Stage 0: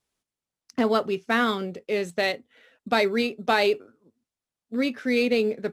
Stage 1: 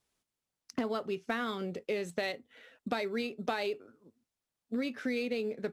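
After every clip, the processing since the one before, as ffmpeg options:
ffmpeg -i in.wav -af "acompressor=threshold=-31dB:ratio=6" out.wav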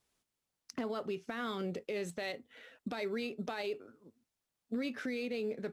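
ffmpeg -i in.wav -af "alimiter=level_in=5.5dB:limit=-24dB:level=0:latency=1:release=60,volume=-5.5dB,volume=1dB" out.wav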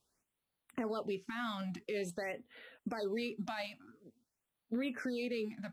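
ffmpeg -i in.wav -af "afftfilt=real='re*(1-between(b*sr/1024,380*pow(6800/380,0.5+0.5*sin(2*PI*0.48*pts/sr))/1.41,380*pow(6800/380,0.5+0.5*sin(2*PI*0.48*pts/sr))*1.41))':imag='im*(1-between(b*sr/1024,380*pow(6800/380,0.5+0.5*sin(2*PI*0.48*pts/sr))/1.41,380*pow(6800/380,0.5+0.5*sin(2*PI*0.48*pts/sr))*1.41))':win_size=1024:overlap=0.75" out.wav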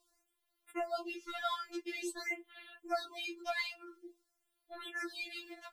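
ffmpeg -i in.wav -af "afftfilt=real='re*4*eq(mod(b,16),0)':imag='im*4*eq(mod(b,16),0)':win_size=2048:overlap=0.75,volume=7.5dB" out.wav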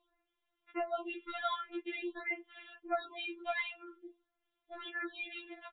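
ffmpeg -i in.wav -af "aresample=8000,aresample=44100,volume=1dB" out.wav

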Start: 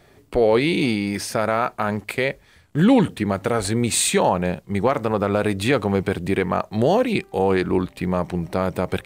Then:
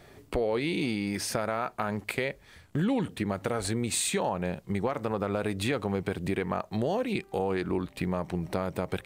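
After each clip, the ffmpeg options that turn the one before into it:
ffmpeg -i in.wav -af "acompressor=threshold=-29dB:ratio=3" out.wav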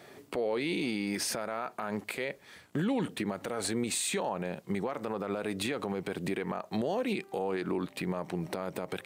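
ffmpeg -i in.wav -af "highpass=190,alimiter=level_in=0.5dB:limit=-24dB:level=0:latency=1:release=63,volume=-0.5dB,volume=2dB" out.wav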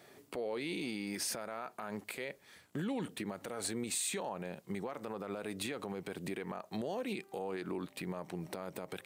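ffmpeg -i in.wav -af "highshelf=frequency=6000:gain=6,volume=-7dB" out.wav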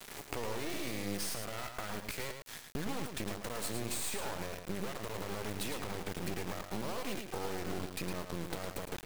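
ffmpeg -i in.wav -af "acompressor=threshold=-47dB:ratio=5,acrusher=bits=6:dc=4:mix=0:aa=0.000001,aecho=1:1:109:0.473,volume=13.5dB" out.wav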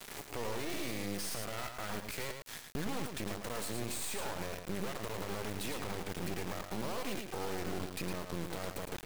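ffmpeg -i in.wav -af "alimiter=level_in=3.5dB:limit=-24dB:level=0:latency=1:release=23,volume=-3.5dB,volume=1dB" out.wav

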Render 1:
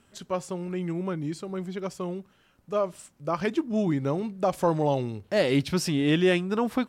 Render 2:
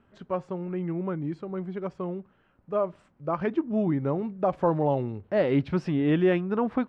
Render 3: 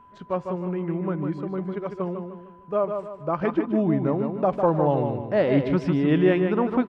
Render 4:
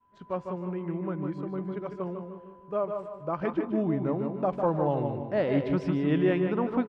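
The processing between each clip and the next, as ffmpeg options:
ffmpeg -i in.wav -af "lowpass=1700" out.wav
ffmpeg -i in.wav -filter_complex "[0:a]asplit=2[link_01][link_02];[link_02]adelay=152,lowpass=frequency=4300:poles=1,volume=-6dB,asplit=2[link_03][link_04];[link_04]adelay=152,lowpass=frequency=4300:poles=1,volume=0.39,asplit=2[link_05][link_06];[link_06]adelay=152,lowpass=frequency=4300:poles=1,volume=0.39,asplit=2[link_07][link_08];[link_08]adelay=152,lowpass=frequency=4300:poles=1,volume=0.39,asplit=2[link_09][link_10];[link_10]adelay=152,lowpass=frequency=4300:poles=1,volume=0.39[link_11];[link_03][link_05][link_07][link_09][link_11]amix=inputs=5:normalize=0[link_12];[link_01][link_12]amix=inputs=2:normalize=0,aeval=exprs='val(0)+0.00251*sin(2*PI*1000*n/s)':channel_layout=same,volume=2.5dB" out.wav
ffmpeg -i in.wav -filter_complex "[0:a]asplit=2[link_01][link_02];[link_02]adelay=173,lowpass=frequency=1600:poles=1,volume=-12dB,asplit=2[link_03][link_04];[link_04]adelay=173,lowpass=frequency=1600:poles=1,volume=0.52,asplit=2[link_05][link_06];[link_06]adelay=173,lowpass=frequency=1600:poles=1,volume=0.52,asplit=2[link_07][link_08];[link_08]adelay=173,lowpass=frequency=1600:poles=1,volume=0.52,asplit=2[link_09][link_10];[link_10]adelay=173,lowpass=frequency=1600:poles=1,volume=0.52[link_11];[link_01][link_03][link_05][link_07][link_09][link_11]amix=inputs=6:normalize=0,agate=range=-33dB:threshold=-45dB:ratio=3:detection=peak,volume=-5.5dB" out.wav

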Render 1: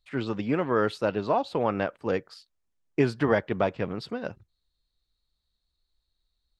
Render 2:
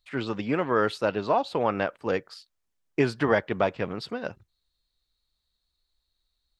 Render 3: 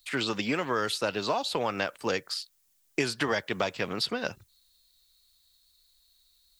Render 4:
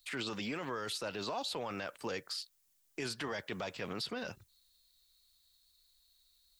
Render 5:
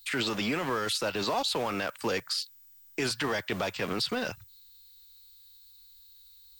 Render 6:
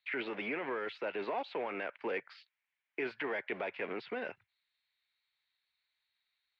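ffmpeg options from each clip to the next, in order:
ffmpeg -i in.wav -af "lowshelf=frequency=490:gain=-5,volume=3dB" out.wav
ffmpeg -i in.wav -filter_complex "[0:a]crystalizer=i=6:c=0,acrossover=split=150|4500[link_01][link_02][link_03];[link_01]acompressor=threshold=-48dB:ratio=4[link_04];[link_02]acompressor=threshold=-28dB:ratio=4[link_05];[link_03]acompressor=threshold=-39dB:ratio=4[link_06];[link_04][link_05][link_06]amix=inputs=3:normalize=0,volume=1.5dB" out.wav
ffmpeg -i in.wav -af "alimiter=level_in=1dB:limit=-24dB:level=0:latency=1:release=12,volume=-1dB,volume=-4.5dB" out.wav
ffmpeg -i in.wav -filter_complex "[0:a]acrossover=split=150|830|3000[link_01][link_02][link_03][link_04];[link_02]aeval=exprs='val(0)*gte(abs(val(0)),0.00501)':channel_layout=same[link_05];[link_01][link_05][link_03][link_04]amix=inputs=4:normalize=0,aeval=exprs='val(0)+0.000794*sin(2*PI*16000*n/s)':channel_layout=same,volume=9dB" out.wav
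ffmpeg -i in.wav -af "highpass=310,equalizer=frequency=400:width_type=q:width=4:gain=4,equalizer=frequency=1200:width_type=q:width=4:gain=-6,equalizer=frequency=2200:width_type=q:width=4:gain=6,lowpass=frequency=2500:width=0.5412,lowpass=frequency=2500:width=1.3066,volume=-6dB" out.wav

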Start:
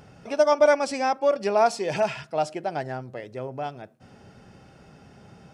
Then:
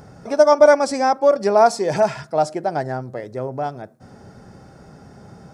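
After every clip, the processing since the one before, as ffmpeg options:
ffmpeg -i in.wav -af "equalizer=frequency=2800:width_type=o:width=0.66:gain=-14,volume=7dB" out.wav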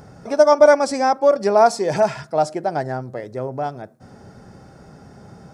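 ffmpeg -i in.wav -af anull out.wav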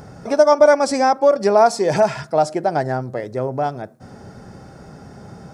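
ffmpeg -i in.wav -af "acompressor=threshold=-19dB:ratio=1.5,volume=4dB" out.wav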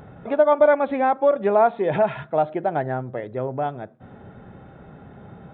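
ffmpeg -i in.wav -af "aresample=8000,aresample=44100,volume=-4dB" out.wav

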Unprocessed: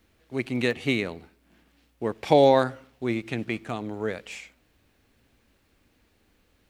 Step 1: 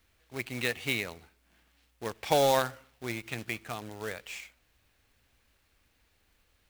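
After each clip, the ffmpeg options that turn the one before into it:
ffmpeg -i in.wav -af "equalizer=frequency=260:width=0.57:gain=-10.5,acrusher=bits=2:mode=log:mix=0:aa=0.000001,volume=-2dB" out.wav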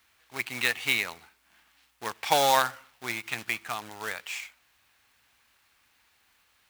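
ffmpeg -i in.wav -af "highpass=frequency=170:poles=1,lowshelf=frequency=690:width_type=q:width=1.5:gain=-7,volume=5.5dB" out.wav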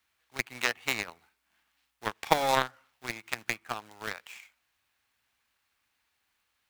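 ffmpeg -i in.wav -filter_complex "[0:a]acrossover=split=540|2000|7000[link_01][link_02][link_03][link_04];[link_01]acompressor=threshold=-36dB:ratio=4[link_05];[link_02]acompressor=threshold=-29dB:ratio=4[link_06];[link_03]acompressor=threshold=-42dB:ratio=4[link_07];[link_04]acompressor=threshold=-50dB:ratio=4[link_08];[link_05][link_06][link_07][link_08]amix=inputs=4:normalize=0,aeval=exprs='0.266*(cos(1*acos(clip(val(0)/0.266,-1,1)))-cos(1*PI/2))+0.0335*(cos(7*acos(clip(val(0)/0.266,-1,1)))-cos(7*PI/2))':channel_layout=same,volume=8dB" out.wav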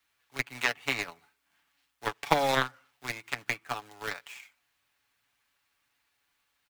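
ffmpeg -i in.wav -filter_complex "[0:a]aecho=1:1:7:0.51,acrossover=split=220|4500[link_01][link_02][link_03];[link_03]alimiter=level_in=1.5dB:limit=-24dB:level=0:latency=1:release=143,volume=-1.5dB[link_04];[link_01][link_02][link_04]amix=inputs=3:normalize=0" out.wav

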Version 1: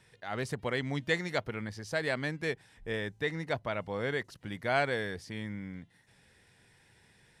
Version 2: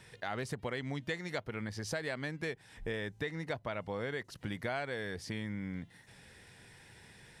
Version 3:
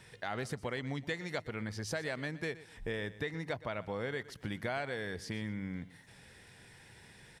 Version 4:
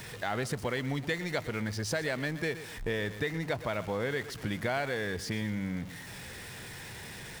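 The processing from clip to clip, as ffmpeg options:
ffmpeg -i in.wav -af "acompressor=threshold=-42dB:ratio=5,volume=6.5dB" out.wav
ffmpeg -i in.wav -af "aecho=1:1:121|242:0.141|0.0367" out.wav
ffmpeg -i in.wav -af "aeval=exprs='val(0)+0.5*0.00531*sgn(val(0))':channel_layout=same,volume=4dB" out.wav

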